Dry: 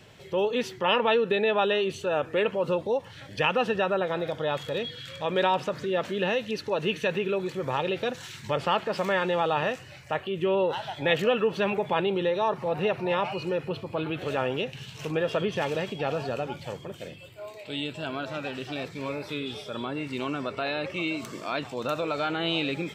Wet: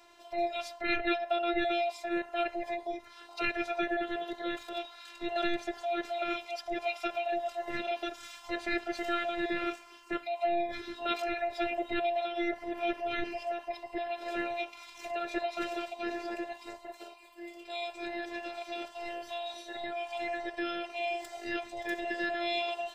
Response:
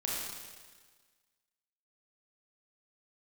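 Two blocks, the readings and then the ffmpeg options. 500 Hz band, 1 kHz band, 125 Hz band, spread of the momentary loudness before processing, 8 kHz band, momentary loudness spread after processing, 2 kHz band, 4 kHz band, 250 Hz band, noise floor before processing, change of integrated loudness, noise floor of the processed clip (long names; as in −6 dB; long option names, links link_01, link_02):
−8.5 dB, −4.5 dB, below −20 dB, 10 LU, can't be measured, 9 LU, −4.0 dB, −7.0 dB, −5.0 dB, −46 dBFS, −6.5 dB, −54 dBFS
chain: -af "afftfilt=real='real(if(between(b,1,1008),(2*floor((b-1)/48)+1)*48-b,b),0)':imag='imag(if(between(b,1,1008),(2*floor((b-1)/48)+1)*48-b,b),0)*if(between(b,1,1008),-1,1)':win_size=2048:overlap=0.75,afftfilt=real='hypot(re,im)*cos(PI*b)':imag='0':win_size=512:overlap=0.75,volume=-2dB"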